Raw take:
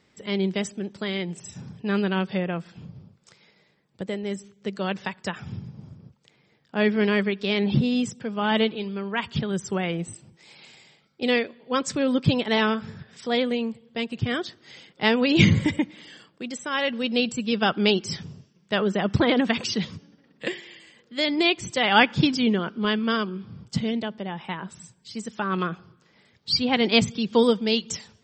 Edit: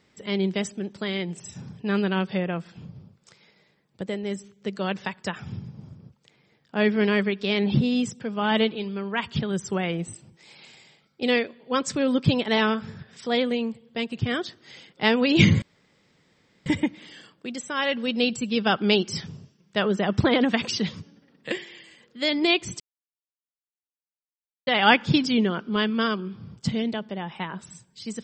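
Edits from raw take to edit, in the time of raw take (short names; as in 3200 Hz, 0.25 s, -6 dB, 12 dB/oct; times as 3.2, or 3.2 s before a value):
15.62 insert room tone 1.04 s
21.76 insert silence 1.87 s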